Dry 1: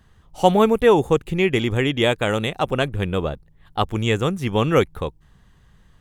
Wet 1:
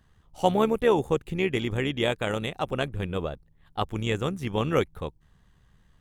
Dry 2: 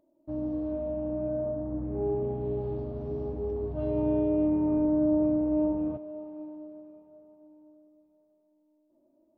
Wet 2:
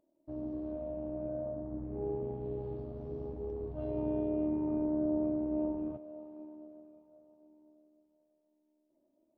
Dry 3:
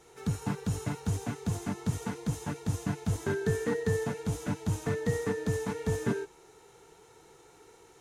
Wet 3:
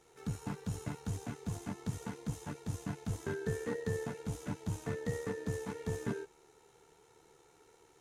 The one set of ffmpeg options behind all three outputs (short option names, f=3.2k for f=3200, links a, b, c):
-af "tremolo=f=74:d=0.462,volume=-5dB"